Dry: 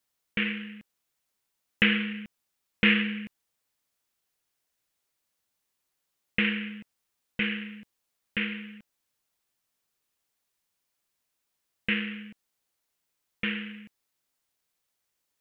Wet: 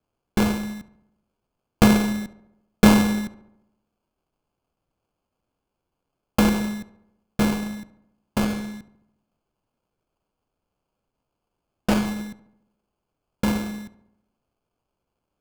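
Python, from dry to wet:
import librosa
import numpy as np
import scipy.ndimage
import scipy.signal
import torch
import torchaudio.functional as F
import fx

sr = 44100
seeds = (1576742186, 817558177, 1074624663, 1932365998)

y = scipy.signal.sosfilt(scipy.signal.butter(2, 3700.0, 'lowpass', fs=sr, output='sos'), x)
y = fx.tilt_eq(y, sr, slope=-2.0)
y = fx.sample_hold(y, sr, seeds[0], rate_hz=1900.0, jitter_pct=0)
y = fx.echo_filtered(y, sr, ms=70, feedback_pct=59, hz=2500.0, wet_db=-15)
y = fx.doppler_dist(y, sr, depth_ms=0.31, at=(8.44, 12.06))
y = F.gain(torch.from_numpy(y), 7.0).numpy()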